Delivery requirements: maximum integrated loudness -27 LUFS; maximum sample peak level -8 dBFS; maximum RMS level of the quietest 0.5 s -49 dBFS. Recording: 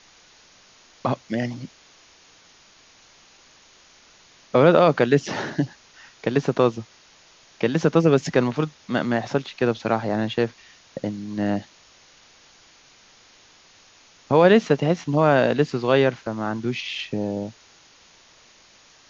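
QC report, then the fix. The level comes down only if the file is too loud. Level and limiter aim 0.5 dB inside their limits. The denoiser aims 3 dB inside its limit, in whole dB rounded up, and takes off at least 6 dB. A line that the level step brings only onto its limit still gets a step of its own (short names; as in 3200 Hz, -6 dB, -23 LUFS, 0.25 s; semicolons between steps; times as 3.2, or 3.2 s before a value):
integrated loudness -22.0 LUFS: fail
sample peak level -3.0 dBFS: fail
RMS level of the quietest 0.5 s -53 dBFS: OK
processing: gain -5.5 dB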